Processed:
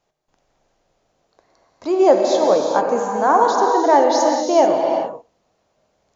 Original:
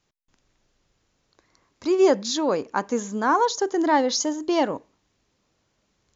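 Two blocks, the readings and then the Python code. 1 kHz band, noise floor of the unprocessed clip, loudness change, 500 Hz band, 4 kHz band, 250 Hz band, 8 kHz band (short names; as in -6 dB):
+8.5 dB, -72 dBFS, +6.5 dB, +8.0 dB, 0.0 dB, +2.5 dB, n/a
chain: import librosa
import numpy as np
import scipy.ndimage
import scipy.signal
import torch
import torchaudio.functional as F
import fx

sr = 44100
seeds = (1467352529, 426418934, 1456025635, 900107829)

y = fx.peak_eq(x, sr, hz=670.0, db=14.5, octaves=1.1)
y = fx.rev_gated(y, sr, seeds[0], gate_ms=460, shape='flat', drr_db=1.0)
y = y * 10.0 ** (-3.0 / 20.0)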